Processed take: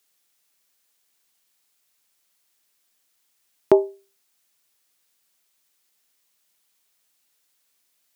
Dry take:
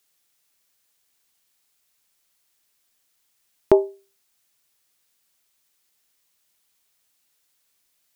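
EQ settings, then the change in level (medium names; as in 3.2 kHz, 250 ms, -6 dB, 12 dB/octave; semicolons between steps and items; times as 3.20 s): high-pass 140 Hz 12 dB/octave; 0.0 dB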